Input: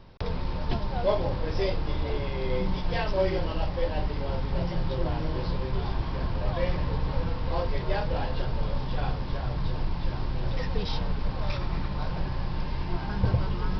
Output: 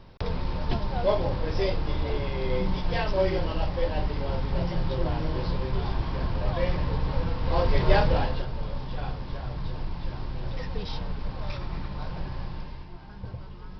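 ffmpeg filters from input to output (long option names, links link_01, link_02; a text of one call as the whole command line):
ffmpeg -i in.wav -af "volume=8dB,afade=type=in:start_time=7.38:duration=0.57:silence=0.446684,afade=type=out:start_time=7.95:duration=0.51:silence=0.266073,afade=type=out:start_time=12.42:duration=0.49:silence=0.316228" out.wav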